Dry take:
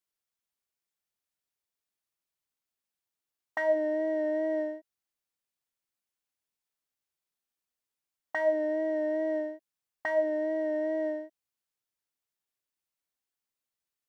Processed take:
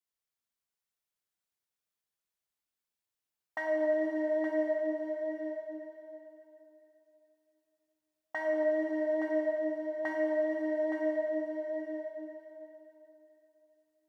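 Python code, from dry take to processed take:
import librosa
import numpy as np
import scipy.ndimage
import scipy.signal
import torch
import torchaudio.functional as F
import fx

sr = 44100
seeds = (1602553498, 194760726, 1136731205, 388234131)

y = x + 10.0 ** (-7.0 / 20.0) * np.pad(x, (int(869 * sr / 1000.0), 0))[:len(x)]
y = fx.rev_plate(y, sr, seeds[0], rt60_s=3.5, hf_ratio=0.9, predelay_ms=0, drr_db=0.0)
y = y * librosa.db_to_amplitude(-5.0)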